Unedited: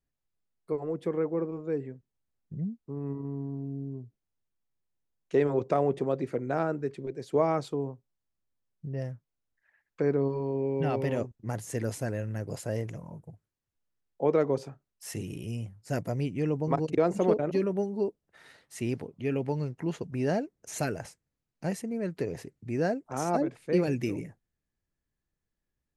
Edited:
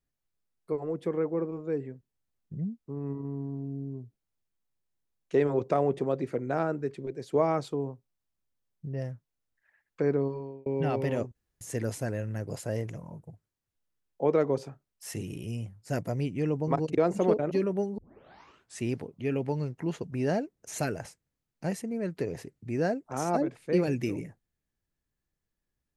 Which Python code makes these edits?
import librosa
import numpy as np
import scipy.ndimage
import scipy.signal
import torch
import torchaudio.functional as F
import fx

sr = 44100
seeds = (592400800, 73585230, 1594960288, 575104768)

y = fx.edit(x, sr, fx.fade_out_span(start_s=10.16, length_s=0.5),
    fx.room_tone_fill(start_s=11.35, length_s=0.26),
    fx.tape_start(start_s=17.98, length_s=0.83), tone=tone)